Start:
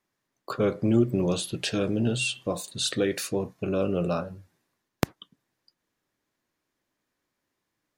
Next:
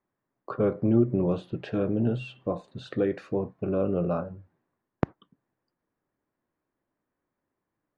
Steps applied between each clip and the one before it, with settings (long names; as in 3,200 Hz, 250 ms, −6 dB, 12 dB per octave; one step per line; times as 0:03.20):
low-pass filter 1,300 Hz 12 dB per octave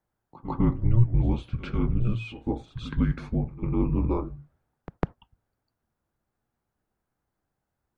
frequency shifter −240 Hz
echo ahead of the sound 151 ms −15 dB
level +2 dB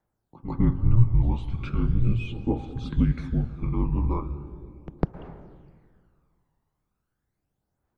dense smooth reverb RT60 2.5 s, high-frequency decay 0.85×, pre-delay 100 ms, DRR 11.5 dB
phase shifter 0.38 Hz, delay 1.1 ms, feedback 50%
level −2.5 dB